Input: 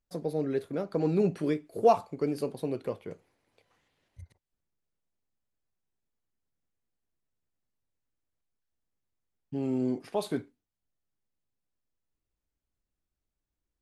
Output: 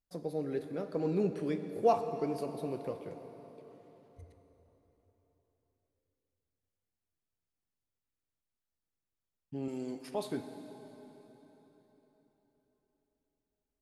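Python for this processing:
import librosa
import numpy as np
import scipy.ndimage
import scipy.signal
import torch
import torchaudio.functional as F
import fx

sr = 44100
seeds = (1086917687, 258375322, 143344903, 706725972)

y = fx.tilt_eq(x, sr, slope=3.0, at=(9.68, 10.11))
y = fx.rev_plate(y, sr, seeds[0], rt60_s=4.3, hf_ratio=0.8, predelay_ms=0, drr_db=7.5)
y = F.gain(torch.from_numpy(y), -5.5).numpy()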